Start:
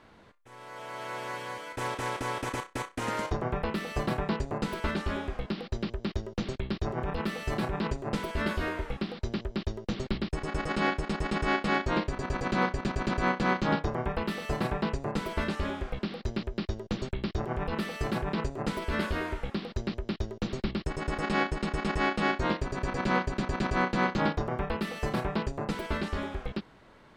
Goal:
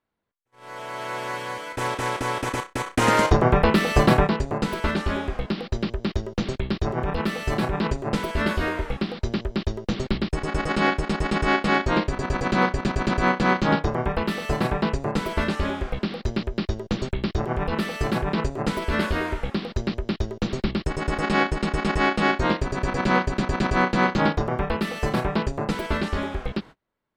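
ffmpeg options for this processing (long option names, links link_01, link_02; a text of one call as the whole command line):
ffmpeg -i in.wav -filter_complex "[0:a]agate=range=-33dB:threshold=-46dB:ratio=16:detection=peak,asettb=1/sr,asplit=3[link_01][link_02][link_03];[link_01]atrim=end=2.864[link_04];[link_02]atrim=start=2.86:end=4.27,asetpts=PTS-STARTPTS,afade=type=in:duration=0.004:curve=qsin,afade=type=out:start_time=1.406:duration=0.004:curve=qsin,acontrast=75[link_05];[link_03]atrim=start=4.266[link_06];[link_04][link_05]acrossfade=duration=0.004:curve1=hsin:curve2=qsin[link_07];[link_07][link_06]acrossfade=duration=0.004:curve1=qsin:curve2=hsin,volume=6.5dB" out.wav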